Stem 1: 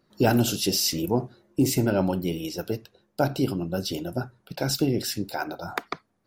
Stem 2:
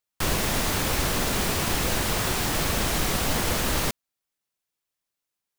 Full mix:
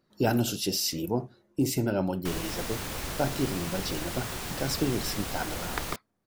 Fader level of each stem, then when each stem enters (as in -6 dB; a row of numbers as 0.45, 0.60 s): -4.5, -10.0 dB; 0.00, 2.05 s